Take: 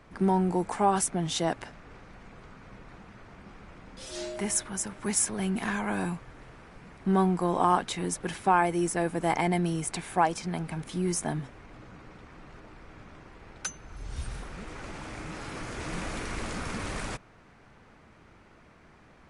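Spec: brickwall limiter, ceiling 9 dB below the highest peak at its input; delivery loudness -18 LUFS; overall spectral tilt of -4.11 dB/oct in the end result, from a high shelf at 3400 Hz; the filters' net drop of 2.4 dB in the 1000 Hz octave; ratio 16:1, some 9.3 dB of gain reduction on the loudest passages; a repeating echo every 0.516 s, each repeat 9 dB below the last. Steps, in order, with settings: bell 1000 Hz -3.5 dB; high shelf 3400 Hz +5 dB; compressor 16:1, threshold -27 dBFS; limiter -25.5 dBFS; feedback echo 0.516 s, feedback 35%, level -9 dB; gain +18 dB

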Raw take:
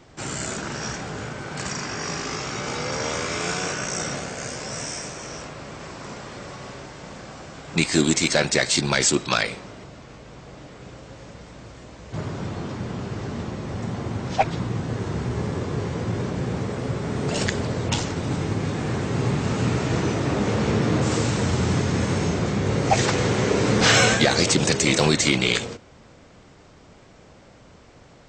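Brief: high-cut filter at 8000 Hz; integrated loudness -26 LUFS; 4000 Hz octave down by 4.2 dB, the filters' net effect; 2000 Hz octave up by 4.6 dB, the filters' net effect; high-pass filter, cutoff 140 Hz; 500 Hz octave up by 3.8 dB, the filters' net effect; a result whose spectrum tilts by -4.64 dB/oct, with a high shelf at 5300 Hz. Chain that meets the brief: HPF 140 Hz; LPF 8000 Hz; bell 500 Hz +4.5 dB; bell 2000 Hz +7.5 dB; bell 4000 Hz -5.5 dB; high shelf 5300 Hz -5.5 dB; gain -3.5 dB

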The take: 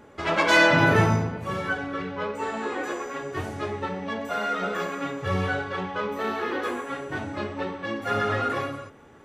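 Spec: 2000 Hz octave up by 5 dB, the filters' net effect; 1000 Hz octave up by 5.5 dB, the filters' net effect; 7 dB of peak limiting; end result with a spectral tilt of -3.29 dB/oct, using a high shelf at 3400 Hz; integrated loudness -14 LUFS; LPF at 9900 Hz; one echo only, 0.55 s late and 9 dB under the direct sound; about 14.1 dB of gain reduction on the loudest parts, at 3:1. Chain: LPF 9900 Hz; bell 1000 Hz +5.5 dB; bell 2000 Hz +3 dB; high shelf 3400 Hz +5 dB; compressor 3:1, threshold -29 dBFS; limiter -22.5 dBFS; echo 0.55 s -9 dB; gain +17.5 dB

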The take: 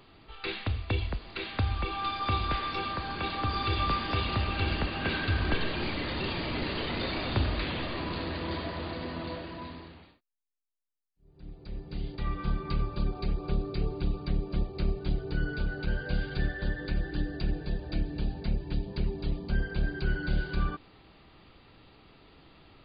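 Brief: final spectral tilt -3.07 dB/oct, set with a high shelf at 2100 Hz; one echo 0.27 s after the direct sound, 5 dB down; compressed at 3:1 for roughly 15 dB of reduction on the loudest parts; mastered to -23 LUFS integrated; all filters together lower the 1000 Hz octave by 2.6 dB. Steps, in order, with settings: bell 1000 Hz -5.5 dB; high shelf 2100 Hz +8 dB; compressor 3:1, threshold -44 dBFS; echo 0.27 s -5 dB; gain +20 dB

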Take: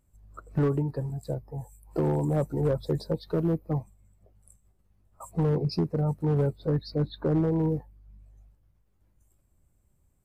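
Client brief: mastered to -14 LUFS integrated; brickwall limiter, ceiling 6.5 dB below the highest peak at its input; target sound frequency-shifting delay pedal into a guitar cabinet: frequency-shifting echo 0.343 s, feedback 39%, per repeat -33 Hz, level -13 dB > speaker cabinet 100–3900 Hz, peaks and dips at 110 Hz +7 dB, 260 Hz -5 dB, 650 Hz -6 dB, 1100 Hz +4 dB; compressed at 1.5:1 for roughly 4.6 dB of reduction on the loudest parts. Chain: compressor 1.5:1, threshold -34 dBFS; limiter -27.5 dBFS; frequency-shifting echo 0.343 s, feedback 39%, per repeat -33 Hz, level -13 dB; speaker cabinet 100–3900 Hz, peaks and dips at 110 Hz +7 dB, 260 Hz -5 dB, 650 Hz -6 dB, 1100 Hz +4 dB; gain +22.5 dB

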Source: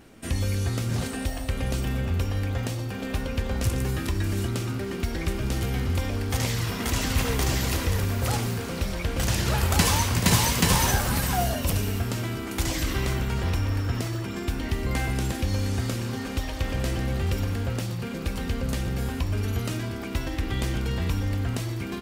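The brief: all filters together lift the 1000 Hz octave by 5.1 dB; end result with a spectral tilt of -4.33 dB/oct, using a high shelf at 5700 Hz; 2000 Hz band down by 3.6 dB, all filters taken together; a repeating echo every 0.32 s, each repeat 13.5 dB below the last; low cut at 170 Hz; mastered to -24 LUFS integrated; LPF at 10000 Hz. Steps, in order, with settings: HPF 170 Hz; LPF 10000 Hz; bell 1000 Hz +8 dB; bell 2000 Hz -7 dB; high shelf 5700 Hz -3 dB; feedback echo 0.32 s, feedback 21%, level -13.5 dB; gain +5.5 dB

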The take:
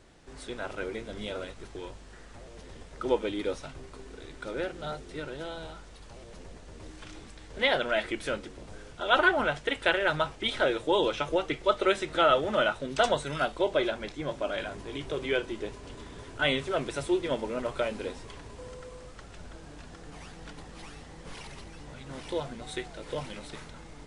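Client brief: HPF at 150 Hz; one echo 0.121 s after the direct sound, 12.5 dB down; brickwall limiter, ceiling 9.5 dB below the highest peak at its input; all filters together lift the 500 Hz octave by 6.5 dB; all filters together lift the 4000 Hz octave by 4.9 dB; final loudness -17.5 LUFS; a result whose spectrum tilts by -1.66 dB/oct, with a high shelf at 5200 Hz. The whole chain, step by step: HPF 150 Hz; bell 500 Hz +8 dB; bell 4000 Hz +8.5 dB; high shelf 5200 Hz -6 dB; limiter -14.5 dBFS; echo 0.121 s -12.5 dB; gain +10 dB

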